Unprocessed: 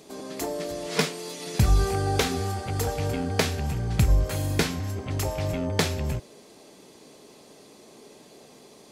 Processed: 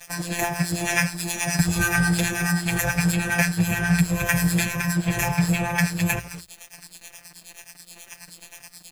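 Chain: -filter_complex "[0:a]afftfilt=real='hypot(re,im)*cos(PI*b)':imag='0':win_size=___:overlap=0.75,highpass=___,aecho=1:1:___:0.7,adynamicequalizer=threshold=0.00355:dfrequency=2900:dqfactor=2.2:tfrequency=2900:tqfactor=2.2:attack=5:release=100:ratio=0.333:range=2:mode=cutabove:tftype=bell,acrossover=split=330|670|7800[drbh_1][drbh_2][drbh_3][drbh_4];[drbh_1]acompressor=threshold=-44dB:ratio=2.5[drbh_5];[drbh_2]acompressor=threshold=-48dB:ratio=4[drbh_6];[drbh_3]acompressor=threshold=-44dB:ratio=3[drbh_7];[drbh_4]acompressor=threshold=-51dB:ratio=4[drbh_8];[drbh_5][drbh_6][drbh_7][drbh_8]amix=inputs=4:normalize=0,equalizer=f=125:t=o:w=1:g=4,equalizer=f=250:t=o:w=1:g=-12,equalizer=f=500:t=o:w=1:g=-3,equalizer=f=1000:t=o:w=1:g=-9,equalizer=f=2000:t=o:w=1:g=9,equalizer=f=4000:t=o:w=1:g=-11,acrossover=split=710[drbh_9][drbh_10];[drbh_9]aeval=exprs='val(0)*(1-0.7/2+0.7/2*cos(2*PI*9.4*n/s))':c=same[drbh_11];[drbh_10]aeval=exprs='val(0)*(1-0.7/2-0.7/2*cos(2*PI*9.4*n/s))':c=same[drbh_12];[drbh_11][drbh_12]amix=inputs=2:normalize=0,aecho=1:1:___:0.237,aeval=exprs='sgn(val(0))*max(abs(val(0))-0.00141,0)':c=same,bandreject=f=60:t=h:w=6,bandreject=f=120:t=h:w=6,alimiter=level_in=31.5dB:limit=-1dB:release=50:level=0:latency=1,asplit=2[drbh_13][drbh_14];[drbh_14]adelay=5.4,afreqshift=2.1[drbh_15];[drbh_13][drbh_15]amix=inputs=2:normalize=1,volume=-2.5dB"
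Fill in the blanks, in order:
1024, 57, 1.2, 214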